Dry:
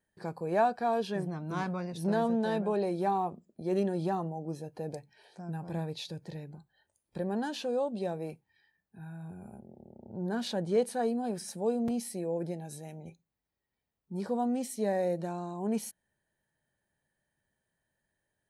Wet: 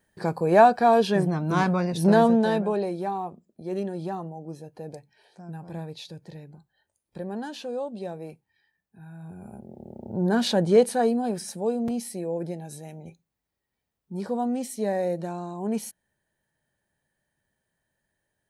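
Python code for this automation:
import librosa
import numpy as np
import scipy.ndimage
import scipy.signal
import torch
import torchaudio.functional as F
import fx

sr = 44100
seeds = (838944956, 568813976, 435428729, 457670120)

y = fx.gain(x, sr, db=fx.line((2.21, 11.0), (3.11, -0.5), (9.04, -0.5), (9.91, 10.5), (10.64, 10.5), (11.72, 3.5)))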